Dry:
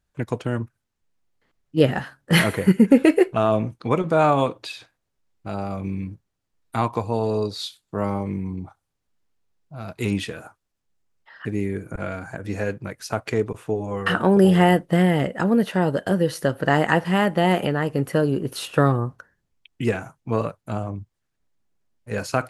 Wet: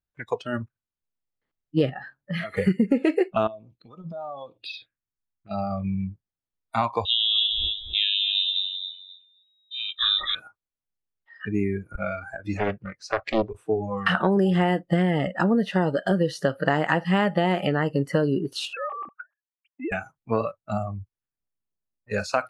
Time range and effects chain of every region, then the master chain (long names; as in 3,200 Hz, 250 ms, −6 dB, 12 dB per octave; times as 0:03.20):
0:01.89–0:02.57: high-shelf EQ 2,800 Hz −9.5 dB + downward compressor, threshold −26 dBFS
0:03.47–0:05.51: downward compressor, threshold −30 dBFS + phaser swept by the level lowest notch 520 Hz, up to 2,200 Hz, full sweep at −29.5 dBFS
0:07.05–0:10.35: repeating echo 264 ms, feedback 23%, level −6 dB + voice inversion scrambler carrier 3,800 Hz
0:12.57–0:13.50: low-pass filter 9,900 Hz + high-shelf EQ 4,900 Hz −8 dB + highs frequency-modulated by the lows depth 0.98 ms
0:18.73–0:19.92: three sine waves on the formant tracks + downward compressor 8 to 1, threshold −28 dBFS
0:20.58–0:22.16: low-pass that shuts in the quiet parts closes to 1,500 Hz, open at −28.5 dBFS + high-shelf EQ 9,400 Hz +7.5 dB
whole clip: low-pass filter 5,700 Hz 12 dB per octave; noise reduction from a noise print of the clip's start 18 dB; downward compressor 6 to 1, threshold −20 dBFS; level +2.5 dB